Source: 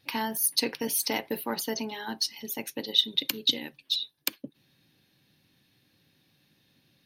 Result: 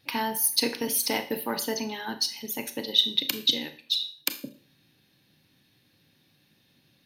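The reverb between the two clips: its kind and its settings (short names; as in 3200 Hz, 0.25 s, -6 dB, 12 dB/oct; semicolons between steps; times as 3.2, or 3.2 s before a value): Schroeder reverb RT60 0.44 s, combs from 26 ms, DRR 9 dB; gain +1.5 dB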